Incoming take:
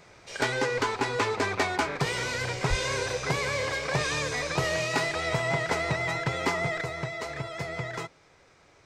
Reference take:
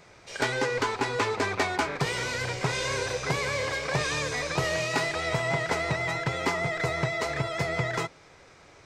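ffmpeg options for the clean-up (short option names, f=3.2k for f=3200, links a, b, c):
-filter_complex "[0:a]asplit=3[a][b][c];[a]afade=t=out:st=2.69:d=0.02[d];[b]highpass=f=140:w=0.5412,highpass=f=140:w=1.3066,afade=t=in:st=2.69:d=0.02,afade=t=out:st=2.81:d=0.02[e];[c]afade=t=in:st=2.81:d=0.02[f];[d][e][f]amix=inputs=3:normalize=0,asetnsamples=n=441:p=0,asendcmd='6.81 volume volume 5.5dB',volume=0dB"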